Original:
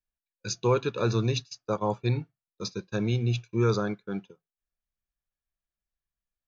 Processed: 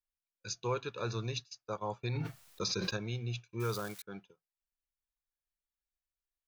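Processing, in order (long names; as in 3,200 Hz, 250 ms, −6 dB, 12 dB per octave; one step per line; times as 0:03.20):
0:03.60–0:04.02: spike at every zero crossing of −29 dBFS
parametric band 230 Hz −8 dB 2.2 octaves
0:02.03–0:02.97: envelope flattener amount 100%
level −6.5 dB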